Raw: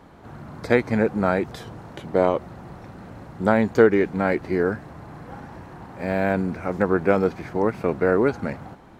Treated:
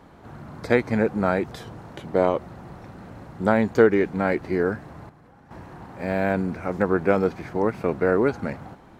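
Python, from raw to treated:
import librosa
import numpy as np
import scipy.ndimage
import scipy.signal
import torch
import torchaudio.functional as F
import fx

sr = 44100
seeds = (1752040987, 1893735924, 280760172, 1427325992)

y = fx.level_steps(x, sr, step_db=17, at=(5.09, 5.51))
y = y * 10.0 ** (-1.0 / 20.0)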